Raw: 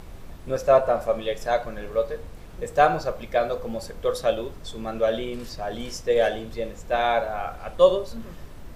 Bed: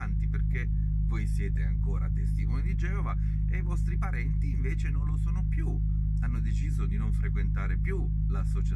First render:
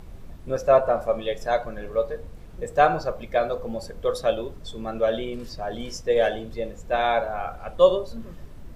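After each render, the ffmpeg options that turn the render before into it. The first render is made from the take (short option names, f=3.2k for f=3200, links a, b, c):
-af "afftdn=nr=6:nf=-42"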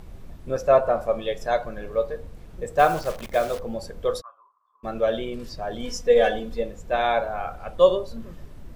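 -filter_complex "[0:a]asplit=3[a][b][c];[a]afade=t=out:st=2.78:d=0.02[d];[b]acrusher=bits=7:dc=4:mix=0:aa=0.000001,afade=t=in:st=2.78:d=0.02,afade=t=out:st=3.59:d=0.02[e];[c]afade=t=in:st=3.59:d=0.02[f];[d][e][f]amix=inputs=3:normalize=0,asplit=3[g][h][i];[g]afade=t=out:st=4.2:d=0.02[j];[h]asuperpass=centerf=1100:order=4:qfactor=6.5,afade=t=in:st=4.2:d=0.02,afade=t=out:st=4.83:d=0.02[k];[i]afade=t=in:st=4.83:d=0.02[l];[j][k][l]amix=inputs=3:normalize=0,asettb=1/sr,asplit=3[m][n][o];[m]atrim=end=5.834[p];[n]atrim=start=5.83:end=6.63,asetpts=PTS-STARTPTS,afade=t=in:d=0.004:c=qsin,afade=t=out:st=0.796:d=0.004:c=qsin,aecho=1:1:4.1:0.8,atrim=end_sample=35280[q];[o]atrim=start=6.626[r];[p][q]acrossfade=d=0.004:c1=hsin:c2=qsin[s];[s][r]acrossfade=d=0.004:c1=qsin:c2=hsin"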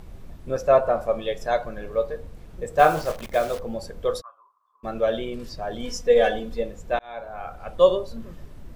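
-filter_complex "[0:a]asettb=1/sr,asplit=3[a][b][c];[a]atrim=end=2.714[d];[b]atrim=start=2.71:end=3.12,asetpts=PTS-STARTPTS,afade=t=in:d=0.004:c=qsin,afade=t=out:st=0.406:d=0.004:c=qsin,asplit=2[e][f];[f]adelay=26,volume=-5.5dB[g];[e][g]amix=inputs=2:normalize=0,atrim=end_sample=18081[h];[c]atrim=start=3.116[i];[d][h]acrossfade=d=0.004:c1=hsin:c2=qsin[j];[j][i]acrossfade=d=0.004:c1=qsin:c2=hsin,asplit=2[k][l];[k]atrim=end=6.99,asetpts=PTS-STARTPTS,afade=t=out:st=6.986:d=0.004:c=hsin[m];[l]atrim=start=6.99,asetpts=PTS-STARTPTS,afade=t=in:d=0.74[n];[m][n]concat=n=2:v=0:a=1"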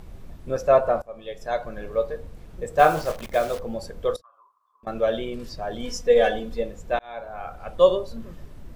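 -filter_complex "[0:a]asettb=1/sr,asplit=3[a][b][c];[a]atrim=end=4.164[d];[b]atrim=start=4.16:end=4.87,asetpts=PTS-STARTPTS,afade=t=in:d=0.004:c=qsin,afade=t=out:st=0.706:d=0.004:c=qsin,acompressor=threshold=-48dB:ratio=16:attack=3.2:release=140:knee=1:detection=peak[e];[c]atrim=start=4.866[f];[d][e]acrossfade=d=0.004:c1=hsin:c2=qsin[g];[g][f]acrossfade=d=0.004:c1=qsin:c2=hsin,asplit=2[h][i];[h]atrim=end=1.02,asetpts=PTS-STARTPTS,afade=t=out:st=1.016:d=0.004:c=hsin:silence=0.0749894[j];[i]atrim=start=1.02,asetpts=PTS-STARTPTS,afade=t=in:d=0.78:silence=0.0749894[k];[j][k]concat=n=2:v=0:a=1"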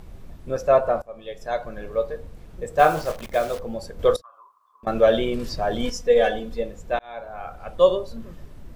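-filter_complex "[0:a]asettb=1/sr,asplit=3[a][b][c];[a]atrim=end=3.994[d];[b]atrim=start=3.99:end=5.9,asetpts=PTS-STARTPTS,afade=t=in:d=0.004:c=qsin,afade=t=out:st=1.906:d=0.004:c=qsin,acontrast=69[e];[c]atrim=start=5.896[f];[d][e]acrossfade=d=0.004:c1=hsin:c2=qsin[g];[g][f]acrossfade=d=0.004:c1=qsin:c2=hsin"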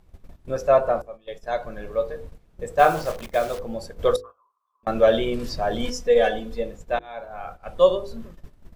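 -af "bandreject=f=50:t=h:w=6,bandreject=f=100:t=h:w=6,bandreject=f=150:t=h:w=6,bandreject=f=200:t=h:w=6,bandreject=f=250:t=h:w=6,bandreject=f=300:t=h:w=6,bandreject=f=350:t=h:w=6,bandreject=f=400:t=h:w=6,bandreject=f=450:t=h:w=6,bandreject=f=500:t=h:w=6,agate=range=-14dB:threshold=-37dB:ratio=16:detection=peak"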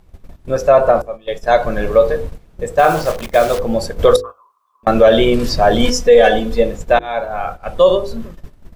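-af "dynaudnorm=f=130:g=9:m=11.5dB,alimiter=level_in=7dB:limit=-1dB:release=50:level=0:latency=1"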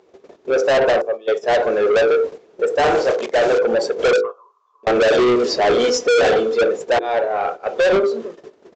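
-af "highpass=f=410:t=q:w=4.9,aresample=16000,asoftclip=type=tanh:threshold=-12.5dB,aresample=44100"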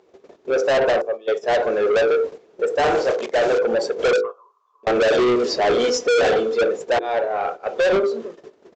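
-af "volume=-2.5dB"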